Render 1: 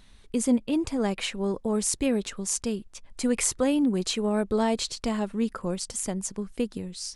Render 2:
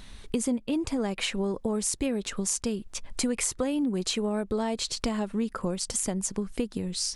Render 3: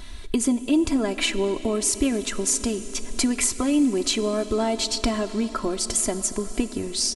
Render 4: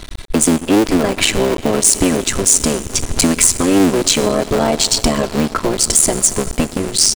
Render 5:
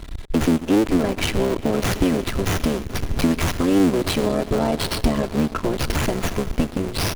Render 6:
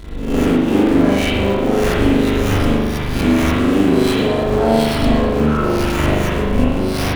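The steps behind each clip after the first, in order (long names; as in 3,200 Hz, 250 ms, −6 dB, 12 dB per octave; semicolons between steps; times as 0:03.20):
downward compressor 5 to 1, threshold −35 dBFS, peak gain reduction 15 dB; level +8.5 dB
comb filter 3 ms, depth 76%; on a send at −12 dB: convolution reverb RT60 5.5 s, pre-delay 6 ms; on the sum: level +4 dB
sub-harmonics by changed cycles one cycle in 3, muted; dynamic equaliser 8,200 Hz, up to +6 dB, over −38 dBFS, Q 0.85; leveller curve on the samples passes 3; level −1 dB
low-shelf EQ 280 Hz +7.5 dB; windowed peak hold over 5 samples; level −8 dB
peak hold with a rise ahead of every peak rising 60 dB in 0.65 s; spring reverb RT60 1.1 s, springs 40 ms, chirp 75 ms, DRR −7 dB; level −4.5 dB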